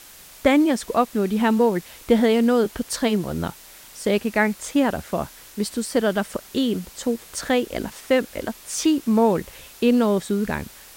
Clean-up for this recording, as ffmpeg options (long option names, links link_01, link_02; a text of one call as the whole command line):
ffmpeg -i in.wav -af "afftdn=noise_reduction=21:noise_floor=-45" out.wav